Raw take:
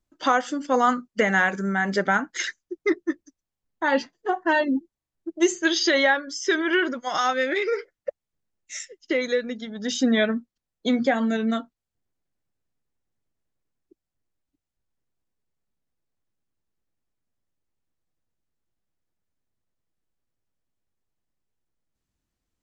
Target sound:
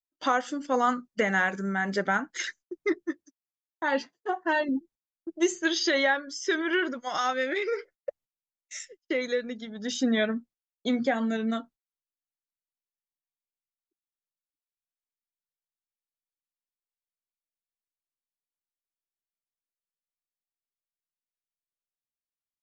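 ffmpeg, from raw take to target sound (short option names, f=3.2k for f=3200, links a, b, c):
-filter_complex "[0:a]agate=range=-27dB:threshold=-46dB:ratio=16:detection=peak,asettb=1/sr,asplit=3[a][b][c];[a]atrim=end=3.064[d];[b]atrim=start=3.06:end=4.69,asetpts=PTS-STARTPTS,afade=t=in:d=0.004:c=qsin,afade=t=out:st=1.626:d=0.004:c=qsin,highpass=f=190:p=1[e];[c]atrim=start=4.686[f];[d][e]acrossfade=d=0.004:c1=hsin:c2=qsin[g];[g][f]acrossfade=d=0.004:c1=qsin:c2=hsin,volume=-4.5dB"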